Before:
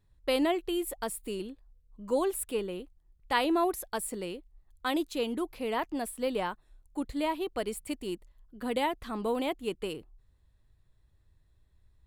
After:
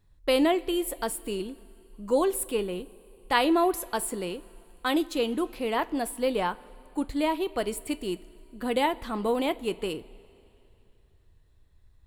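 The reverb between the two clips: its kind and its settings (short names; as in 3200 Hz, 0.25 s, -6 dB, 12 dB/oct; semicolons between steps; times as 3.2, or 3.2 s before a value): two-slope reverb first 0.21 s, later 2.9 s, from -18 dB, DRR 12.5 dB; gain +4 dB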